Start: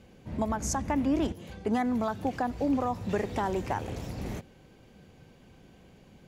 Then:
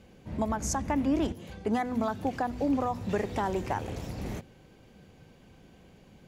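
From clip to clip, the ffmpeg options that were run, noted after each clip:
-af "bandreject=f=123.6:t=h:w=4,bandreject=f=247.2:t=h:w=4,bandreject=f=370.8:t=h:w=4"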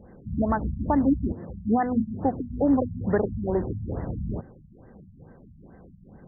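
-af "afftfilt=real='re*lt(b*sr/1024,210*pow(2100/210,0.5+0.5*sin(2*PI*2.3*pts/sr)))':imag='im*lt(b*sr/1024,210*pow(2100/210,0.5+0.5*sin(2*PI*2.3*pts/sr)))':win_size=1024:overlap=0.75,volume=6.5dB"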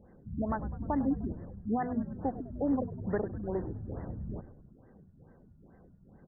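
-filter_complex "[0:a]asplit=8[a][b][c][d][e][f][g][h];[b]adelay=101,afreqshift=-64,volume=-15dB[i];[c]adelay=202,afreqshift=-128,volume=-19dB[j];[d]adelay=303,afreqshift=-192,volume=-23dB[k];[e]adelay=404,afreqshift=-256,volume=-27dB[l];[f]adelay=505,afreqshift=-320,volume=-31.1dB[m];[g]adelay=606,afreqshift=-384,volume=-35.1dB[n];[h]adelay=707,afreqshift=-448,volume=-39.1dB[o];[a][i][j][k][l][m][n][o]amix=inputs=8:normalize=0,volume=-8.5dB"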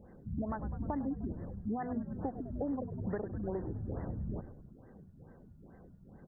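-af "acompressor=threshold=-35dB:ratio=6,volume=2dB"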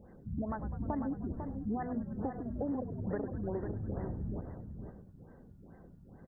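-af "aecho=1:1:499:0.422"

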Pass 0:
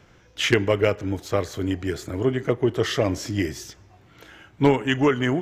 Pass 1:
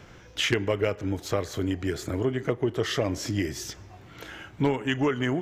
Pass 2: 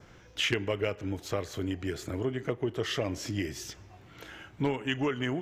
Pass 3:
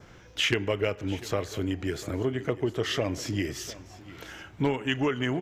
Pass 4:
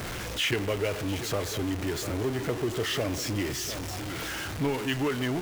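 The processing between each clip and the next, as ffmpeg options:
-af "acompressor=threshold=-35dB:ratio=2,volume=5dB"
-af "adynamicequalizer=threshold=0.00562:dfrequency=2700:dqfactor=2.8:tfrequency=2700:tqfactor=2.8:attack=5:release=100:ratio=0.375:range=2.5:mode=boostabove:tftype=bell,volume=-5dB"
-af "aecho=1:1:698:0.126,volume=3dB"
-af "aeval=exprs='val(0)+0.5*0.0531*sgn(val(0))':c=same,volume=-4.5dB"

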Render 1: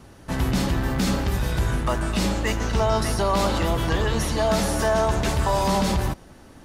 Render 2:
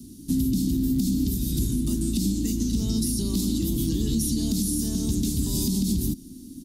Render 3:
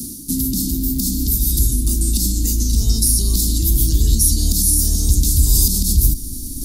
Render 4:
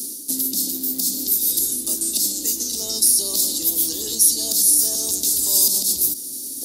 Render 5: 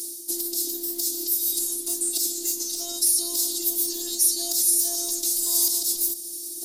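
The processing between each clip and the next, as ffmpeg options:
-filter_complex "[0:a]firequalizer=gain_entry='entry(120,0);entry(260,15);entry(560,-28);entry(1600,-27);entry(3700,2);entry(5400,6);entry(12000,15)':delay=0.05:min_phase=1,acrossover=split=170[a][b];[b]acompressor=threshold=-18dB:ratio=6[c];[a][c]amix=inputs=2:normalize=0,alimiter=limit=-14dB:level=0:latency=1:release=150,volume=-1.5dB"
-af "asubboost=boost=10.5:cutoff=66,areverse,acompressor=mode=upward:threshold=-20dB:ratio=2.5,areverse,aexciter=amount=4.6:drive=1.7:freq=4.2k,volume=1.5dB"
-af "highpass=f=560:t=q:w=4.3,volume=1.5dB"
-filter_complex "[0:a]asplit=2[a][b];[b]asoftclip=type=tanh:threshold=-16dB,volume=-10dB[c];[a][c]amix=inputs=2:normalize=0,afftfilt=real='hypot(re,im)*cos(PI*b)':imag='0':win_size=512:overlap=0.75,volume=-3dB"

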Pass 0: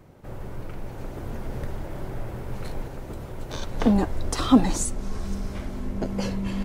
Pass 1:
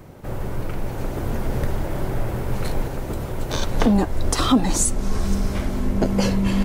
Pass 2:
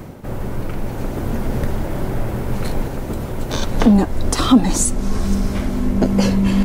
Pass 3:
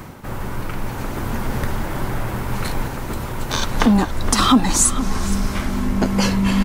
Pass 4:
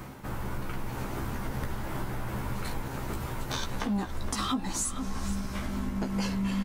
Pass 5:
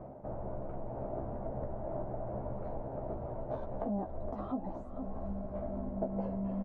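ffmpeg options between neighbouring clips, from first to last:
-af "highshelf=f=9.1k:g=5,alimiter=limit=-16dB:level=0:latency=1:release=352,volume=8.5dB"
-af "equalizer=f=230:w=2.3:g=5,areverse,acompressor=mode=upward:threshold=-25dB:ratio=2.5,areverse,volume=2dB"
-filter_complex "[0:a]lowshelf=f=780:t=q:w=1.5:g=-6,asplit=2[a][b];[b]adelay=466.5,volume=-12dB,highshelf=f=4k:g=-10.5[c];[a][c]amix=inputs=2:normalize=0,volume=3.5dB"
-filter_complex "[0:a]acompressor=threshold=-23dB:ratio=4,asplit=2[a][b];[b]adelay=15,volume=-4.5dB[c];[a][c]amix=inputs=2:normalize=0,volume=-7.5dB"
-af "lowpass=f=640:t=q:w=7,volume=-7.5dB"

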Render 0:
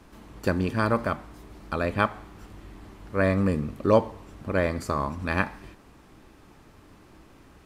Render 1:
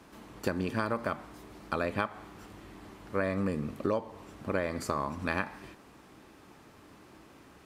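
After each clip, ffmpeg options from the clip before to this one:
-af "highpass=f=170:p=1,acompressor=threshold=-26dB:ratio=10"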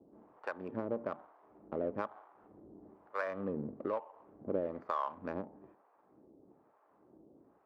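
-filter_complex "[0:a]acrossover=split=640[a][b];[a]aeval=exprs='val(0)*(1-1/2+1/2*cos(2*PI*1.1*n/s))':c=same[c];[b]aeval=exprs='val(0)*(1-1/2-1/2*cos(2*PI*1.1*n/s))':c=same[d];[c][d]amix=inputs=2:normalize=0,adynamicsmooth=sensitivity=5.5:basefreq=680,bandpass=f=680:t=q:w=0.71:csg=0,volume=2.5dB"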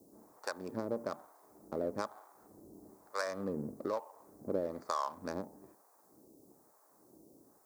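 -af "aexciter=amount=12.7:drive=6.9:freq=4.4k"

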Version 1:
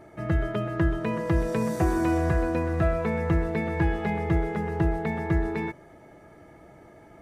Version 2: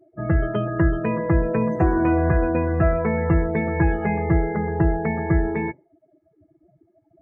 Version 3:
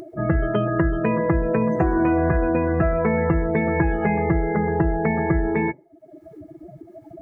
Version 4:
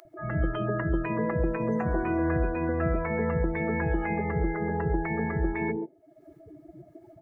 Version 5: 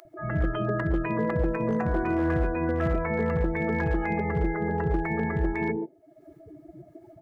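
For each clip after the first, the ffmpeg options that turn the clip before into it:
-af "afftdn=nr=36:nf=-36,volume=5dB"
-af "acompressor=mode=upward:threshold=-33dB:ratio=2.5,equalizer=f=91:w=2.5:g=-6,acompressor=threshold=-21dB:ratio=6,volume=5dB"
-filter_complex "[0:a]acrossover=split=210|670[a][b][c];[a]adelay=50[d];[b]adelay=140[e];[d][e][c]amix=inputs=3:normalize=0,volume=-5.5dB"
-af "volume=20dB,asoftclip=hard,volume=-20dB,volume=1.5dB"

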